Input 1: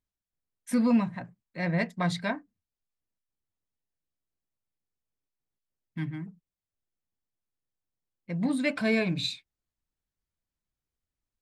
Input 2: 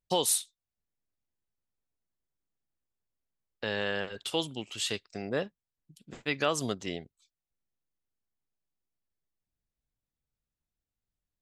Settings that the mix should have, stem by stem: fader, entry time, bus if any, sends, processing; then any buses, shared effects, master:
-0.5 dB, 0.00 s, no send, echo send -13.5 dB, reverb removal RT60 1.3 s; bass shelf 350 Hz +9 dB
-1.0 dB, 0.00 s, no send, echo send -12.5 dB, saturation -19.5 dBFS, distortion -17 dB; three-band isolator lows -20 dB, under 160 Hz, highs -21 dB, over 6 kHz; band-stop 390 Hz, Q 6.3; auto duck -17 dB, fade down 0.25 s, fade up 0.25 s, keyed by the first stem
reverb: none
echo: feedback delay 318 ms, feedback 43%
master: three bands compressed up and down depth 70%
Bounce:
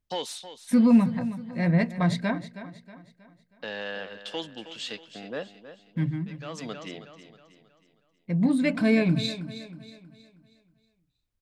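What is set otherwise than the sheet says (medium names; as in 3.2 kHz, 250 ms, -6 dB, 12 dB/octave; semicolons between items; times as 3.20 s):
stem 1: missing reverb removal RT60 1.3 s; master: missing three bands compressed up and down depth 70%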